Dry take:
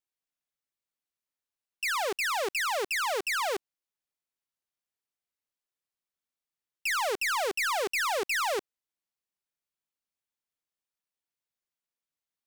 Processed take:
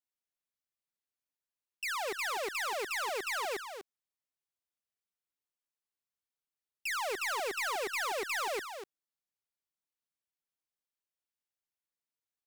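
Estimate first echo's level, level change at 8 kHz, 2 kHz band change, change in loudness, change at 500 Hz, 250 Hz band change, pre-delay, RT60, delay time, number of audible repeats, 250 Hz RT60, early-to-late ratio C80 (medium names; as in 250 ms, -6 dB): -8.5 dB, -5.5 dB, -5.5 dB, -5.5 dB, -5.5 dB, -5.5 dB, no reverb, no reverb, 245 ms, 1, no reverb, no reverb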